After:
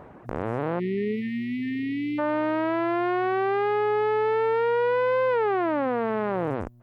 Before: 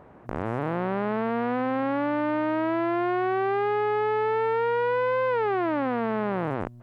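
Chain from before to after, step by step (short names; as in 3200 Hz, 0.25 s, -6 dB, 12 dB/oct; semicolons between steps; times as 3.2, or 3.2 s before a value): spectral delete 0.79–2.19, 450–1800 Hz; reverb removal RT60 1.2 s; dynamic EQ 480 Hz, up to +4 dB, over -41 dBFS, Q 2.6; limiter -20 dBFS, peak gain reduction 5.5 dB; gain +5 dB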